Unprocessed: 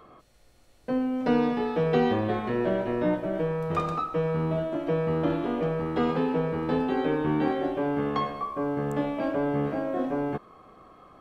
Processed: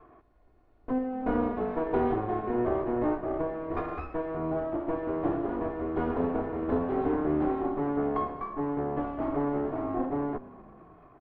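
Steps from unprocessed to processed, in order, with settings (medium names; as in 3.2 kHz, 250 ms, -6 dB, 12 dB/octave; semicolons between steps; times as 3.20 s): comb filter that takes the minimum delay 2.8 ms; low-pass 1.1 kHz 12 dB/octave; frequency-shifting echo 230 ms, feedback 55%, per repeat -38 Hz, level -19.5 dB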